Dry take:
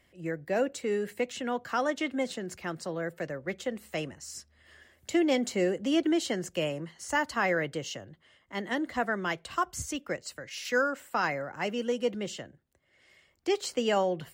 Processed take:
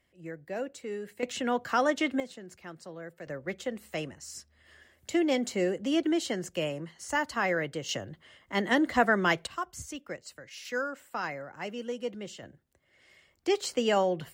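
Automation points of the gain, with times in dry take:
-7 dB
from 1.23 s +3 dB
from 2.2 s -9 dB
from 3.27 s -1 dB
from 7.89 s +6 dB
from 9.47 s -5.5 dB
from 12.43 s +1 dB

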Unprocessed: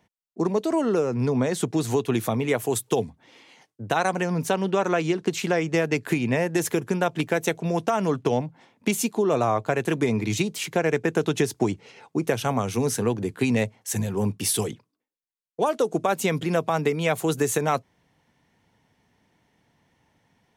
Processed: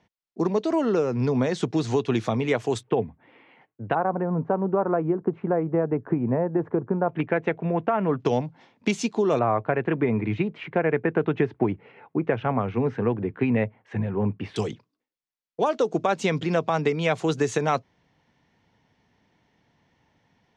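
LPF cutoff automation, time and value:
LPF 24 dB/oct
5900 Hz
from 2.83 s 2400 Hz
from 3.95 s 1200 Hz
from 7.09 s 2300 Hz
from 8.2 s 5900 Hz
from 9.39 s 2300 Hz
from 14.56 s 6000 Hz

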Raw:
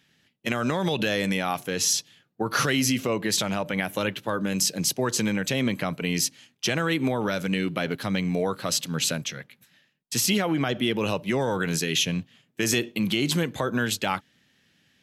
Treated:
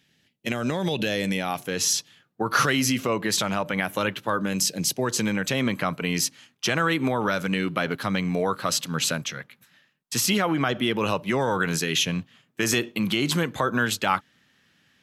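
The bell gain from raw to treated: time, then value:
bell 1200 Hz 0.97 oct
1.33 s -5 dB
1.95 s +5.5 dB
4.42 s +5.5 dB
4.78 s -3.5 dB
5.56 s +7 dB

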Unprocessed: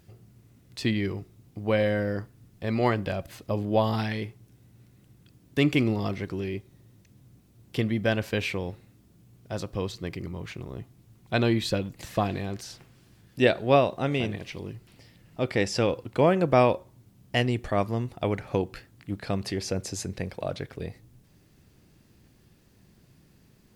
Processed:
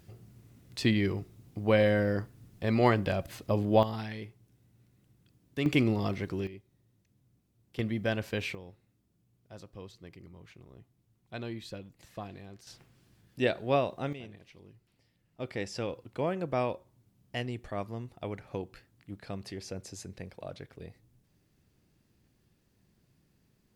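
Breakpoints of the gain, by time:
0 dB
from 3.83 s -9 dB
from 5.66 s -2 dB
from 6.47 s -14 dB
from 7.79 s -5.5 dB
from 8.55 s -15.5 dB
from 12.67 s -7 dB
from 14.13 s -17.5 dB
from 15.4 s -10.5 dB

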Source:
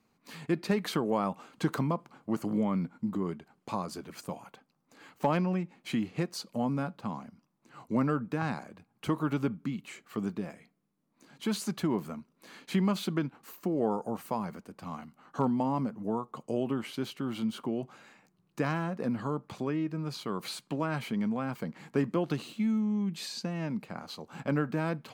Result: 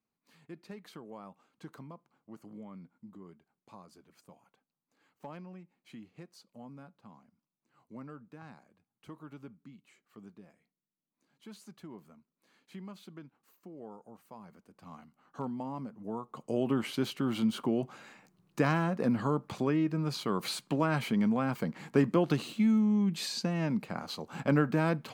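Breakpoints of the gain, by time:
14.27 s -18 dB
14.92 s -9 dB
15.91 s -9 dB
16.78 s +3 dB

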